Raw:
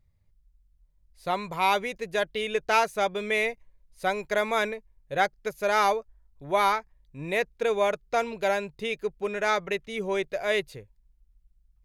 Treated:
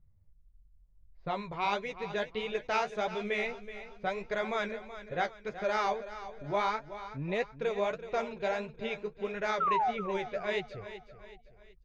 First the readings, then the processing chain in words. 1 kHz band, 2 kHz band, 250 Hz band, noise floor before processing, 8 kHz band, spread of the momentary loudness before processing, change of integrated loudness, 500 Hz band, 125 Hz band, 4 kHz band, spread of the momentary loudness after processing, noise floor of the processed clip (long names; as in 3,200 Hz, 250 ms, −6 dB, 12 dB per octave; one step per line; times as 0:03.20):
−5.5 dB, −7.5 dB, −3.5 dB, −66 dBFS, −12.5 dB, 8 LU, −6.5 dB, −6.0 dB, −1.0 dB, −7.5 dB, 12 LU, −61 dBFS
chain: low-pass filter 6,300 Hz 24 dB per octave
low-pass that shuts in the quiet parts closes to 1,300 Hz, open at −22 dBFS
low-shelf EQ 210 Hz +7 dB
in parallel at 0 dB: downward compressor, threshold −34 dBFS, peak gain reduction 16 dB
on the sum: flanger 1.6 Hz, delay 5.4 ms, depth 9.9 ms, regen +33%
sound drawn into the spectrogram fall, 0:09.60–0:09.91, 690–1,400 Hz −22 dBFS
on a send: repeating echo 376 ms, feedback 43%, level −13 dB
on the sum: level −6 dB